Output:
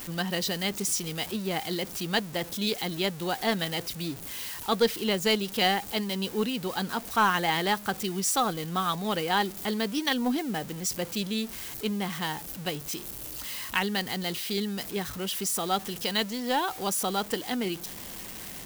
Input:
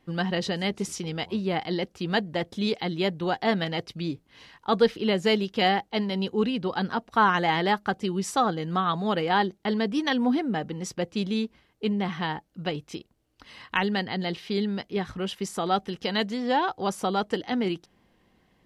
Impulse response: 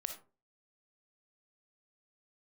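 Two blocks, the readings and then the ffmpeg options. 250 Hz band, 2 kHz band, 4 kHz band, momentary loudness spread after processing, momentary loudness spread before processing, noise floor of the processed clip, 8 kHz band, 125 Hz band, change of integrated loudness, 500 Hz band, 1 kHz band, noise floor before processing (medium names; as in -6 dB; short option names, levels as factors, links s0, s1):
-4.0 dB, -1.0 dB, +2.0 dB, 8 LU, 9 LU, -42 dBFS, +10.0 dB, -3.5 dB, -2.0 dB, -3.5 dB, -3.0 dB, -66 dBFS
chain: -af "aeval=exprs='val(0)+0.5*0.0188*sgn(val(0))':c=same,aeval=exprs='0.376*(cos(1*acos(clip(val(0)/0.376,-1,1)))-cos(1*PI/2))+0.0168*(cos(4*acos(clip(val(0)/0.376,-1,1)))-cos(4*PI/2))+0.00668*(cos(6*acos(clip(val(0)/0.376,-1,1)))-cos(6*PI/2))+0.0119*(cos(7*acos(clip(val(0)/0.376,-1,1)))-cos(7*PI/2))':c=same,aemphasis=mode=production:type=75kf,volume=0.631"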